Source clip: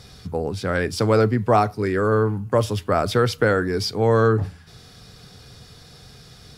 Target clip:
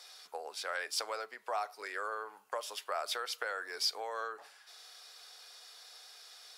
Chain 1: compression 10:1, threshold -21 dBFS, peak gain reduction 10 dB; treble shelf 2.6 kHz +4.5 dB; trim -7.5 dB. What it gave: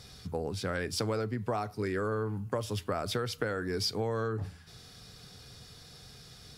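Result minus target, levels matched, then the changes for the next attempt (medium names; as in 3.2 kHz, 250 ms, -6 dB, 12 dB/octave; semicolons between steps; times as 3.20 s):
500 Hz band +4.5 dB
add after compression: high-pass 630 Hz 24 dB/octave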